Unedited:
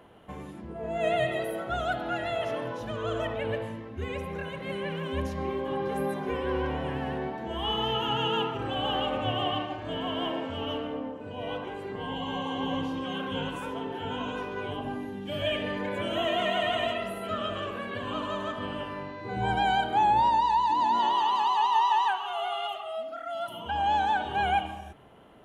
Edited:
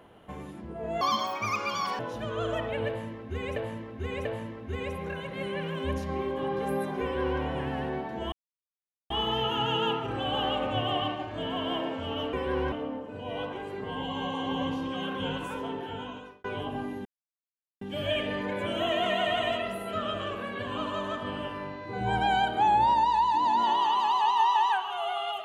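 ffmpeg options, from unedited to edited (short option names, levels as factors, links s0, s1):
-filter_complex "[0:a]asplit=10[s0][s1][s2][s3][s4][s5][s6][s7][s8][s9];[s0]atrim=end=1.014[s10];[s1]atrim=start=1.01:end=2.66,asetpts=PTS-STARTPTS,asetrate=74088,aresample=44100,atrim=end_sample=43312,asetpts=PTS-STARTPTS[s11];[s2]atrim=start=2.656:end=4.232[s12];[s3]atrim=start=3.538:end=4.232[s13];[s4]atrim=start=3.538:end=7.61,asetpts=PTS-STARTPTS,afade=t=out:st=4.068:d=0.004:c=hsin,apad=pad_dur=0.78[s14];[s5]atrim=start=7.61:end=10.842,asetpts=PTS-STARTPTS,afade=t=in:d=0.004:c=hsin[s15];[s6]atrim=start=6.308:end=6.702[s16];[s7]atrim=start=10.838:end=14.56,asetpts=PTS-STARTPTS,afade=t=out:st=3.012:d=0.71[s17];[s8]atrim=start=14.56:end=15.17,asetpts=PTS-STARTPTS,afade=t=in:d=0.004:c=hsin,afade=t=out:st=0.606:d=0.004:c=hsin,apad=pad_dur=0.76[s18];[s9]atrim=start=15.17,asetpts=PTS-STARTPTS,afade=t=in:d=0.004:c=hsin[s19];[s10][s11]acrossfade=d=0.004:c1=hsin:c2=hsin[s20];[s20][s12]acrossfade=d=0.004:c1=hsin:c2=hsin[s21];[s21][s13]acrossfade=d=0.004:c1=hsin:c2=hsin[s22];[s14][s15]concat=n=2:v=0:a=1[s23];[s22][s23]acrossfade=d=0.004:c1=hsin:c2=hsin[s24];[s24][s16]acrossfade=d=0.004:c1=hsin:c2=hsin[s25];[s17][s18][s19]concat=n=3:v=0:a=1[s26];[s25][s26]acrossfade=d=0.004:c1=hsin:c2=hsin"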